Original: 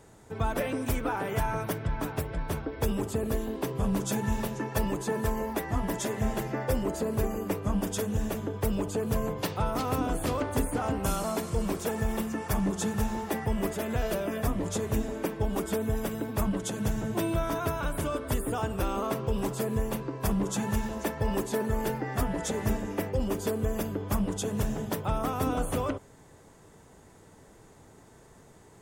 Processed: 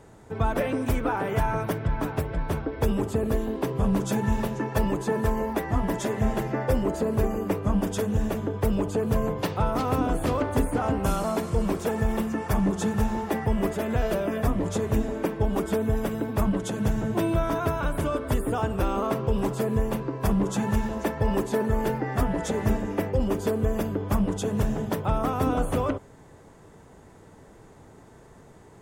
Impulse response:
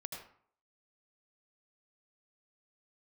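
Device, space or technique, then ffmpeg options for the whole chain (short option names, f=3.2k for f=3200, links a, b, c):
behind a face mask: -af "highshelf=f=3.3k:g=-8,volume=4.5dB"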